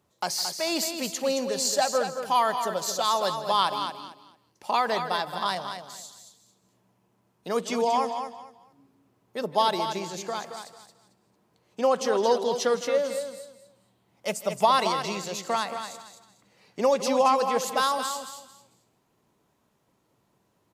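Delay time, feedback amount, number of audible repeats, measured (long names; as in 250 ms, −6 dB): 158 ms, repeats not evenly spaced, 5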